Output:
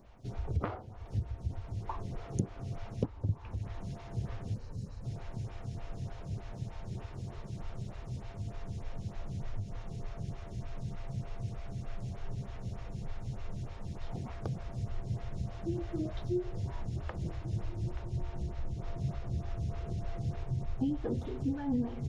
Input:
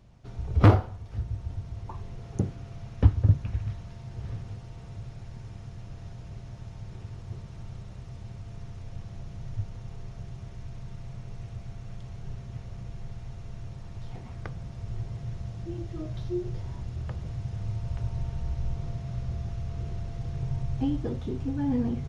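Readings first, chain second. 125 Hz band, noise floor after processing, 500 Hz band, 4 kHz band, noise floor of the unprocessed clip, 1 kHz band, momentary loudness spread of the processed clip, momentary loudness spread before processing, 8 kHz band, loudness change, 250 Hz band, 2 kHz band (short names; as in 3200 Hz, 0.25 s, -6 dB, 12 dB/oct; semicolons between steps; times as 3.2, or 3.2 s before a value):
-7.0 dB, -47 dBFS, -4.0 dB, -4.5 dB, -44 dBFS, -6.5 dB, 8 LU, 15 LU, n/a, -6.5 dB, -4.5 dB, -6.5 dB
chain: spectral delete 4.54–5.05, 300–3800 Hz; compressor 12:1, threshold -31 dBFS, peak gain reduction 20.5 dB; on a send: diffused feedback echo 1.615 s, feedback 48%, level -12.5 dB; on the sum: photocell phaser 3.3 Hz; gain +5 dB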